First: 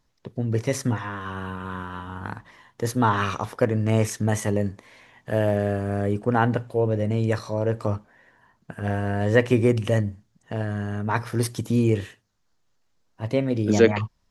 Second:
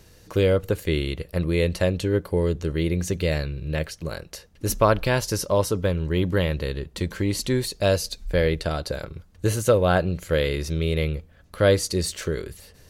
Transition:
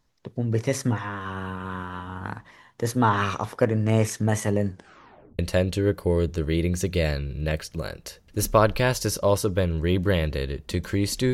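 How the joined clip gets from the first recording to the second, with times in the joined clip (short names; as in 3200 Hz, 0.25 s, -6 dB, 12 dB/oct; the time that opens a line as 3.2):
first
4.7 tape stop 0.69 s
5.39 switch to second from 1.66 s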